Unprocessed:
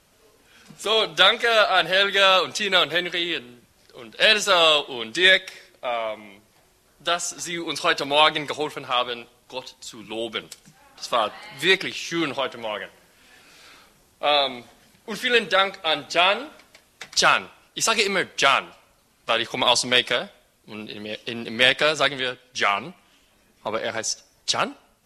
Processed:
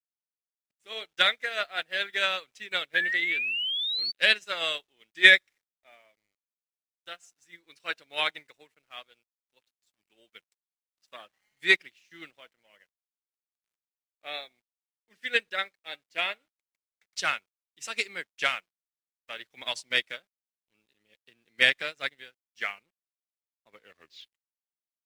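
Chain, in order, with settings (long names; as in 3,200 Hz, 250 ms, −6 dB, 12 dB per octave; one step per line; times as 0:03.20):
turntable brake at the end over 1.38 s
octave-band graphic EQ 1,000/2,000/8,000 Hz −5/+10/+4 dB
sound drawn into the spectrogram rise, 0:02.94–0:04.12, 1,600–4,600 Hz −14 dBFS
centre clipping without the shift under −34.5 dBFS
expander for the loud parts 2.5 to 1, over −30 dBFS
level −4 dB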